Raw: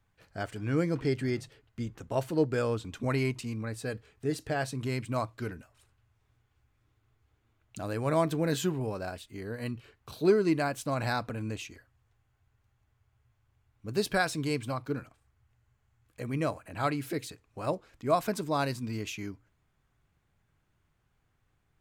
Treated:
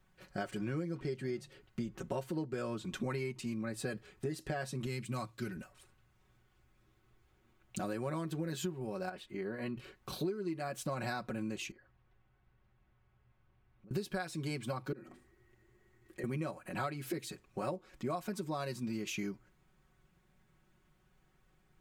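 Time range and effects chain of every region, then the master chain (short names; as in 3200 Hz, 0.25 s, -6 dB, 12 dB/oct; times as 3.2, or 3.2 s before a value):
4.86–5.57 HPF 54 Hz + bell 620 Hz -9 dB 2.9 oct
9.09–9.77 tone controls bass -5 dB, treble -14 dB + compressor 1.5:1, threshold -43 dBFS
11.71–13.91 compressor 16:1, threshold -59 dBFS + air absorption 230 m
14.92–16.24 notches 50/100/150/200/250 Hz + compressor 3:1, threshold -54 dBFS + small resonant body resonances 360/1900 Hz, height 17 dB, ringing for 40 ms
whole clip: bell 290 Hz +4 dB 1.1 oct; comb 5.4 ms, depth 82%; compressor 12:1, threshold -35 dBFS; gain +1 dB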